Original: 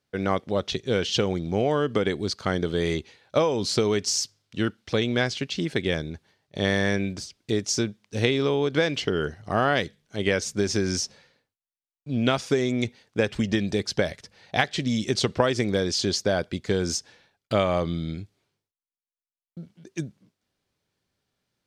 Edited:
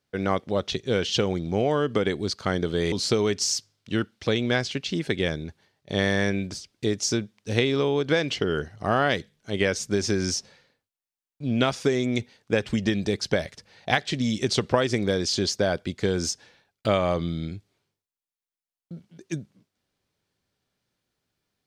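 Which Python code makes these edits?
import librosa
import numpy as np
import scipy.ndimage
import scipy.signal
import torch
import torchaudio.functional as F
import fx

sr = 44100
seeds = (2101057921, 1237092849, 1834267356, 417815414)

y = fx.edit(x, sr, fx.cut(start_s=2.92, length_s=0.66), tone=tone)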